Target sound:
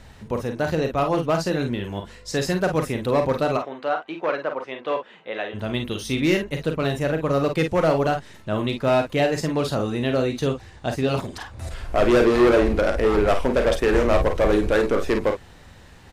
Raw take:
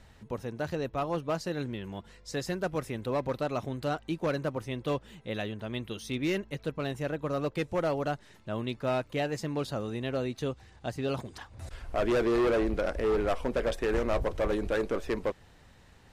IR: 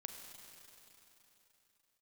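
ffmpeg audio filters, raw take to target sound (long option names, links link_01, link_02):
-filter_complex "[0:a]asplit=3[link_01][link_02][link_03];[link_01]afade=type=out:start_time=3.56:duration=0.02[link_04];[link_02]highpass=540,lowpass=2400,afade=type=in:start_time=3.56:duration=0.02,afade=type=out:start_time=5.53:duration=0.02[link_05];[link_03]afade=type=in:start_time=5.53:duration=0.02[link_06];[link_04][link_05][link_06]amix=inputs=3:normalize=0,aecho=1:1:38|50:0.335|0.398,volume=9dB"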